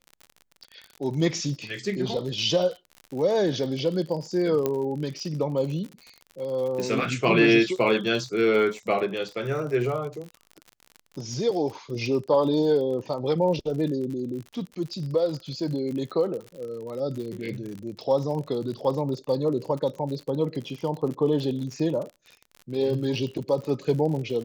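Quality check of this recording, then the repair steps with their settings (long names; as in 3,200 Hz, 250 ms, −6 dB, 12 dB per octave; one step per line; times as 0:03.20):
surface crackle 55 per second −33 dBFS
0:04.66: click −12 dBFS
0:06.80: click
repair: click removal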